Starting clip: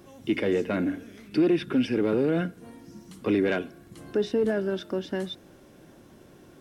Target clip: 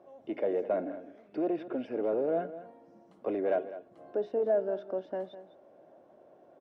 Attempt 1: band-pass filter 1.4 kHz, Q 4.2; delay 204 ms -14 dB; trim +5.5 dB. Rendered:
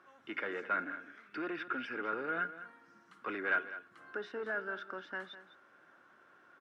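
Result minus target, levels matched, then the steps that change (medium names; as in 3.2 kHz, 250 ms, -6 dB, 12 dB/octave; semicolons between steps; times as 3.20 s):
500 Hz band -7.5 dB
change: band-pass filter 640 Hz, Q 4.2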